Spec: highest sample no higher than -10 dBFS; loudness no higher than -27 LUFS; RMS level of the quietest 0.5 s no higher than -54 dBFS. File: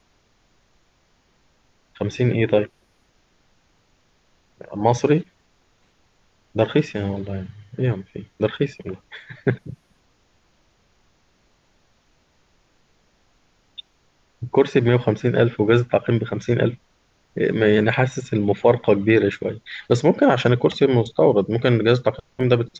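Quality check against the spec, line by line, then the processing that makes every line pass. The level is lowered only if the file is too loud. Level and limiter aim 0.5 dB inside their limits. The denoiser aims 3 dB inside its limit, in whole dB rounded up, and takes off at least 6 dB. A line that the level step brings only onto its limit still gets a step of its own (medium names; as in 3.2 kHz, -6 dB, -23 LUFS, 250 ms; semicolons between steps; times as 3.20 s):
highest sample -3.5 dBFS: fail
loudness -20.0 LUFS: fail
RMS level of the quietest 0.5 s -62 dBFS: pass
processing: trim -7.5 dB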